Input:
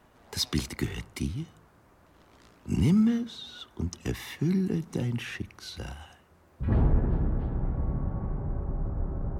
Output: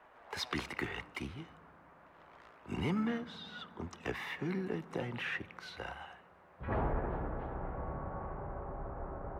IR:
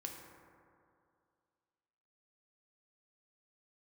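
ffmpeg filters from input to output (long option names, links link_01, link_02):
-filter_complex "[0:a]acrossover=split=480 2600:gain=0.126 1 0.1[link_01][link_02][link_03];[link_01][link_02][link_03]amix=inputs=3:normalize=0,asplit=2[link_04][link_05];[link_05]asetrate=58866,aresample=44100,atempo=0.749154,volume=-17dB[link_06];[link_04][link_06]amix=inputs=2:normalize=0,asplit=2[link_07][link_08];[1:a]atrim=start_sample=2205,asetrate=23373,aresample=44100[link_09];[link_08][link_09]afir=irnorm=-1:irlink=0,volume=-17.5dB[link_10];[link_07][link_10]amix=inputs=2:normalize=0,volume=3dB"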